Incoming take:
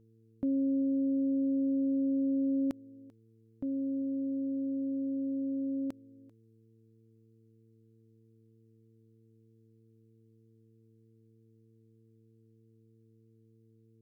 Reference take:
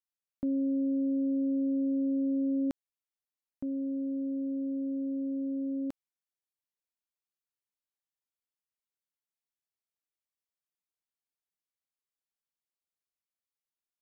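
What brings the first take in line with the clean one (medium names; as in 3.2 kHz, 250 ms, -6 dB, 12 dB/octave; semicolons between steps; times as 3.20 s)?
de-hum 112.1 Hz, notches 4; inverse comb 391 ms -23 dB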